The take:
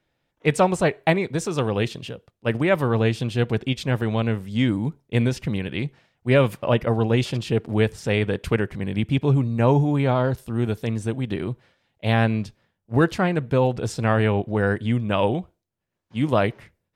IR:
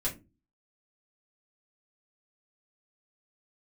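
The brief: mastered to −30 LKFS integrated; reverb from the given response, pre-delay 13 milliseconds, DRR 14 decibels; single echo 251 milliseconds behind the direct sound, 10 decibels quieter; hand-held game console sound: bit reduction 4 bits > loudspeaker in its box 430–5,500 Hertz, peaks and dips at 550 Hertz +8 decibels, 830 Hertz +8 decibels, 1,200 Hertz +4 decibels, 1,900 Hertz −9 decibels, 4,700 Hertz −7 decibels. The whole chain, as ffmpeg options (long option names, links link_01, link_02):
-filter_complex "[0:a]aecho=1:1:251:0.316,asplit=2[link_01][link_02];[1:a]atrim=start_sample=2205,adelay=13[link_03];[link_02][link_03]afir=irnorm=-1:irlink=0,volume=-18dB[link_04];[link_01][link_04]amix=inputs=2:normalize=0,acrusher=bits=3:mix=0:aa=0.000001,highpass=430,equalizer=frequency=550:width_type=q:width=4:gain=8,equalizer=frequency=830:width_type=q:width=4:gain=8,equalizer=frequency=1200:width_type=q:width=4:gain=4,equalizer=frequency=1900:width_type=q:width=4:gain=-9,equalizer=frequency=4700:width_type=q:width=4:gain=-7,lowpass=frequency=5500:width=0.5412,lowpass=frequency=5500:width=1.3066,volume=-8.5dB"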